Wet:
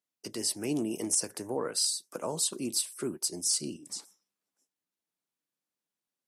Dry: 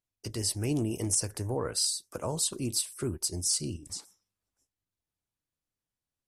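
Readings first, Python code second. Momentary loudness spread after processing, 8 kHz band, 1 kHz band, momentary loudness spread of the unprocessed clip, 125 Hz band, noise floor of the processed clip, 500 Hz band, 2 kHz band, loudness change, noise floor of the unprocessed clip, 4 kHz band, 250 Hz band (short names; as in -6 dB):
10 LU, 0.0 dB, 0.0 dB, 9 LU, -12.0 dB, under -85 dBFS, 0.0 dB, 0.0 dB, -0.5 dB, under -85 dBFS, 0.0 dB, -0.5 dB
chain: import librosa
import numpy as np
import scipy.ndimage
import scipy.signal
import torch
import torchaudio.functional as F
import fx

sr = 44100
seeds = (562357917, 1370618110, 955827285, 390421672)

y = scipy.signal.sosfilt(scipy.signal.butter(4, 180.0, 'highpass', fs=sr, output='sos'), x)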